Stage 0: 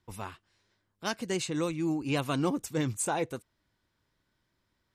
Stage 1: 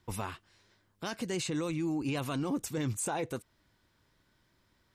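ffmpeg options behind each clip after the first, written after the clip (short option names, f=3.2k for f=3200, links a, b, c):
-filter_complex "[0:a]asplit=2[a][b];[b]acompressor=threshold=-39dB:ratio=6,volume=0.5dB[c];[a][c]amix=inputs=2:normalize=0,alimiter=level_in=1.5dB:limit=-24dB:level=0:latency=1:release=24,volume=-1.5dB"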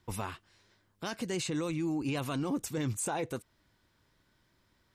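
-af anull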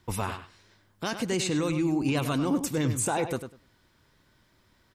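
-filter_complex "[0:a]asplit=2[a][b];[b]adelay=99,lowpass=f=3.6k:p=1,volume=-9dB,asplit=2[c][d];[d]adelay=99,lowpass=f=3.6k:p=1,volume=0.17,asplit=2[e][f];[f]adelay=99,lowpass=f=3.6k:p=1,volume=0.17[g];[a][c][e][g]amix=inputs=4:normalize=0,volume=6dB"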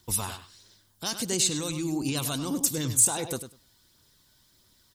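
-af "aphaser=in_gain=1:out_gain=1:delay=1.4:decay=0.26:speed=1.5:type=triangular,aexciter=amount=3.5:drive=7.3:freq=3.3k,volume=-5dB"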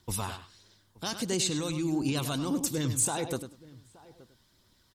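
-filter_complex "[0:a]aemphasis=mode=reproduction:type=cd,asplit=2[a][b];[b]adelay=874.6,volume=-21dB,highshelf=f=4k:g=-19.7[c];[a][c]amix=inputs=2:normalize=0"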